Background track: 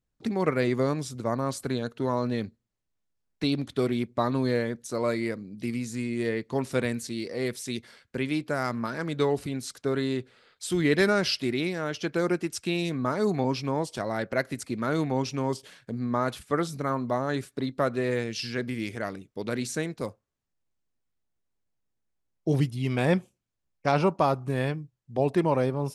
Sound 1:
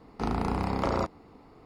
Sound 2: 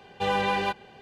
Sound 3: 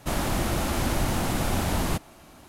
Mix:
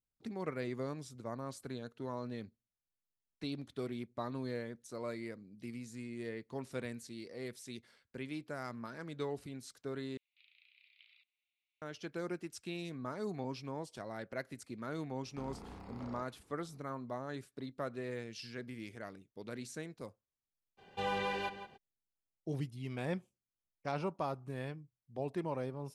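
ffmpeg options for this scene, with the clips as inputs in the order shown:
ffmpeg -i bed.wav -i cue0.wav -i cue1.wav -filter_complex "[1:a]asplit=2[link_01][link_02];[0:a]volume=-14dB[link_03];[link_01]asuperpass=centerf=3000:order=8:qfactor=1.8[link_04];[link_02]alimiter=level_in=0.5dB:limit=-24dB:level=0:latency=1:release=37,volume=-0.5dB[link_05];[2:a]asplit=2[link_06][link_07];[link_07]adelay=169.1,volume=-11dB,highshelf=frequency=4000:gain=-3.8[link_08];[link_06][link_08]amix=inputs=2:normalize=0[link_09];[link_03]asplit=2[link_10][link_11];[link_10]atrim=end=10.174[link_12];[link_04]atrim=end=1.65,asetpts=PTS-STARTPTS,volume=-15.5dB[link_13];[link_11]atrim=start=11.816[link_14];[link_05]atrim=end=1.65,asetpts=PTS-STARTPTS,volume=-16dB,afade=type=in:duration=0.004:curve=hsin,afade=type=out:start_time=1.646:duration=0.004:curve=hsin,adelay=15170[link_15];[link_09]atrim=end=1.01,asetpts=PTS-STARTPTS,volume=-10dB,afade=type=in:duration=0.02,afade=type=out:start_time=0.99:duration=0.02,adelay=20770[link_16];[link_12][link_13]acrossfade=duration=0.004:curve1=hsin:curve2=hsin[link_17];[link_17][link_14]acrossfade=duration=0.004:curve1=hsin:curve2=hsin[link_18];[link_18][link_15][link_16]amix=inputs=3:normalize=0" out.wav

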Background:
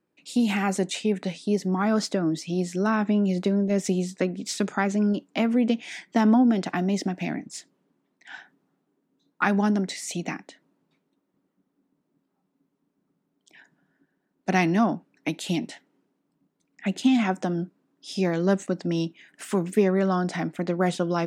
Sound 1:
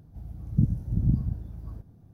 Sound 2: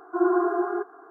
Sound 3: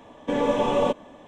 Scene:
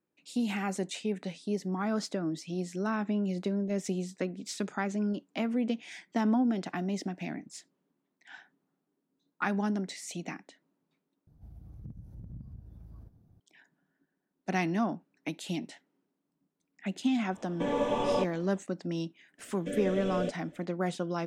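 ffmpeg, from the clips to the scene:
ffmpeg -i bed.wav -i cue0.wav -i cue1.wav -i cue2.wav -filter_complex "[3:a]asplit=2[link_01][link_02];[0:a]volume=-8dB[link_03];[1:a]acompressor=threshold=-35dB:ratio=3:attack=0.24:release=115:knee=1:detection=rms[link_04];[link_02]asuperstop=centerf=950:order=8:qfactor=1.5[link_05];[link_03]asplit=2[link_06][link_07];[link_06]atrim=end=11.274[link_08];[link_04]atrim=end=2.13,asetpts=PTS-STARTPTS,volume=-8.5dB[link_09];[link_07]atrim=start=13.396[link_10];[link_01]atrim=end=1.27,asetpts=PTS-STARTPTS,volume=-6.5dB,afade=type=in:duration=0.004:curve=hsin,afade=type=out:start_time=1.266:duration=0.004:curve=hsin,adelay=763812S[link_11];[link_05]atrim=end=1.27,asetpts=PTS-STARTPTS,volume=-10.5dB,afade=type=in:duration=0.004:curve=hsin,afade=type=out:start_time=1.266:duration=0.004:curve=hsin,adelay=19380[link_12];[link_08][link_09]acrossfade=duration=0.004:curve1=hsin:curve2=hsin[link_13];[link_13][link_10]acrossfade=duration=0.004:curve1=hsin:curve2=hsin[link_14];[link_14][link_11][link_12]amix=inputs=3:normalize=0" out.wav

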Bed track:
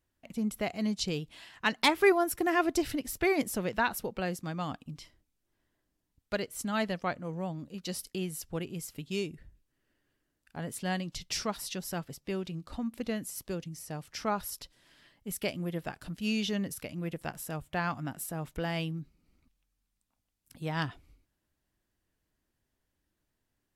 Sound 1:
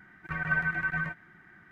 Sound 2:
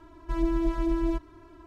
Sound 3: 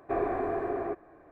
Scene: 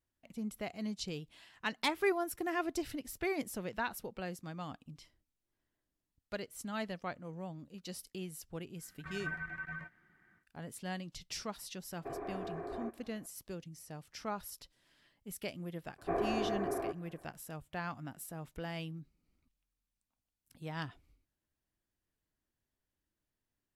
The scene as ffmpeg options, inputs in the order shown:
ffmpeg -i bed.wav -i cue0.wav -i cue1.wav -i cue2.wav -filter_complex "[3:a]asplit=2[link_01][link_02];[0:a]volume=-8dB[link_03];[link_01]acompressor=threshold=-31dB:ratio=6:attack=3.2:release=140:knee=1:detection=peak[link_04];[1:a]atrim=end=1.71,asetpts=PTS-STARTPTS,volume=-12.5dB,afade=type=in:duration=0.1,afade=type=out:start_time=1.61:duration=0.1,adelay=8750[link_05];[link_04]atrim=end=1.31,asetpts=PTS-STARTPTS,volume=-7dB,afade=type=in:duration=0.004:curve=hsin,afade=type=out:start_time=1.306:duration=0.004:curve=hsin,adelay=11960[link_06];[link_02]atrim=end=1.31,asetpts=PTS-STARTPTS,volume=-4.5dB,afade=type=in:duration=0.004:curve=hsin,afade=type=out:start_time=1.306:duration=0.004:curve=hsin,adelay=15980[link_07];[link_03][link_05][link_06][link_07]amix=inputs=4:normalize=0" out.wav

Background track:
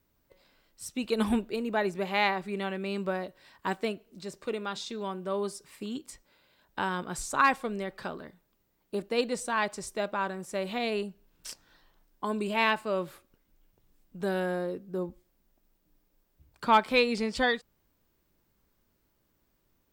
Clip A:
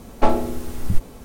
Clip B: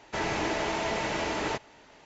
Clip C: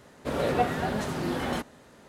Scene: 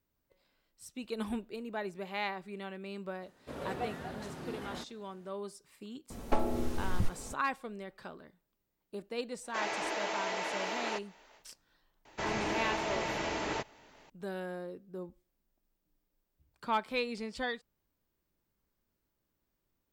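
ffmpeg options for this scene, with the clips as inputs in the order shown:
ffmpeg -i bed.wav -i cue0.wav -i cue1.wav -i cue2.wav -filter_complex "[2:a]asplit=2[link_01][link_02];[0:a]volume=-9.5dB[link_03];[1:a]acrossover=split=430|7000[link_04][link_05][link_06];[link_04]acompressor=threshold=-21dB:ratio=4[link_07];[link_05]acompressor=threshold=-29dB:ratio=4[link_08];[link_06]acompressor=threshold=-56dB:ratio=4[link_09];[link_07][link_08][link_09]amix=inputs=3:normalize=0[link_10];[link_01]highpass=440[link_11];[3:a]atrim=end=2.08,asetpts=PTS-STARTPTS,volume=-13dB,afade=type=in:duration=0.004:curve=hsin,afade=type=out:start_time=2.076:duration=0.004:curve=hsin,adelay=3220[link_12];[link_10]atrim=end=1.24,asetpts=PTS-STARTPTS,volume=-4dB,afade=type=in:duration=0.004:curve=hsin,afade=type=out:start_time=1.236:duration=0.004:curve=hsin,adelay=269010S[link_13];[link_11]atrim=end=2.05,asetpts=PTS-STARTPTS,volume=-4.5dB,afade=type=in:duration=0.1,afade=type=out:start_time=1.95:duration=0.1,adelay=9410[link_14];[link_02]atrim=end=2.05,asetpts=PTS-STARTPTS,volume=-4.5dB,afade=type=in:duration=0.004:curve=hsin,afade=type=out:start_time=2.046:duration=0.004:curve=hsin,adelay=12050[link_15];[link_03][link_12][link_13][link_14][link_15]amix=inputs=5:normalize=0" out.wav

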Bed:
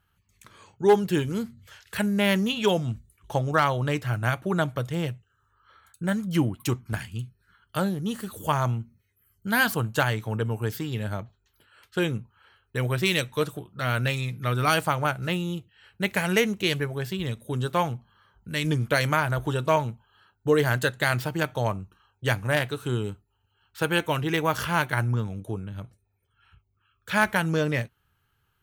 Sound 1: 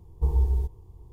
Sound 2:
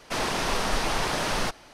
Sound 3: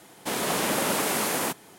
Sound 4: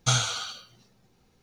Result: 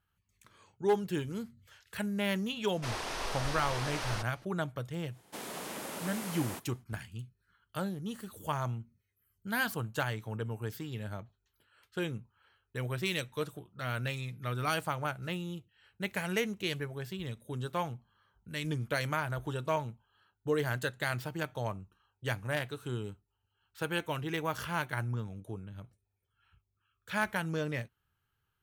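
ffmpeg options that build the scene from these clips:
ffmpeg -i bed.wav -i cue0.wav -i cue1.wav -i cue2.wav -filter_complex "[0:a]volume=-9.5dB[link_01];[2:a]equalizer=frequency=180:width_type=o:width=1.2:gain=-8.5[link_02];[3:a]acompressor=threshold=-33dB:ratio=2:attack=93:release=75:knee=1:detection=peak[link_03];[link_02]atrim=end=1.73,asetpts=PTS-STARTPTS,volume=-9.5dB,afade=type=in:duration=0.004:curve=hsin,afade=type=out:start_time=1.726:duration=0.004:curve=hsin,adelay=2720[link_04];[link_03]atrim=end=1.78,asetpts=PTS-STARTPTS,volume=-13dB,afade=type=in:duration=0.1,afade=type=out:start_time=1.68:duration=0.1,adelay=5070[link_05];[link_01][link_04][link_05]amix=inputs=3:normalize=0" out.wav

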